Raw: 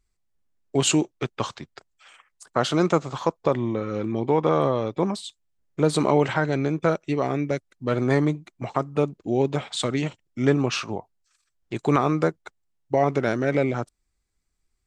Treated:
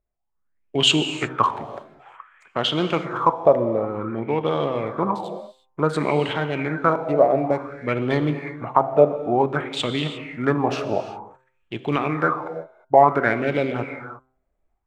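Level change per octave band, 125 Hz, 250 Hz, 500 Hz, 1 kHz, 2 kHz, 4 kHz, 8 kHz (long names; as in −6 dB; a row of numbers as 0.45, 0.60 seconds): −1.5 dB, −1.0 dB, +3.0 dB, +6.5 dB, +4.5 dB, +7.5 dB, can't be measured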